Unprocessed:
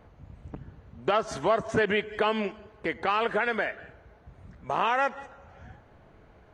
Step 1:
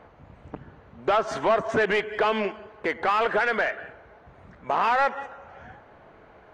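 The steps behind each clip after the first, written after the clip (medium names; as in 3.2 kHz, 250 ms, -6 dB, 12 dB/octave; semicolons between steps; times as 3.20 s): overdrive pedal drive 16 dB, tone 1.6 kHz, clips at -11.5 dBFS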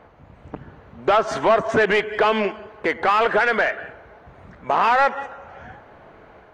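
level rider gain up to 3.5 dB; trim +1.5 dB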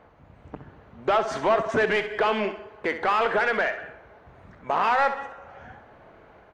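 feedback delay 65 ms, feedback 36%, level -11 dB; trim -5 dB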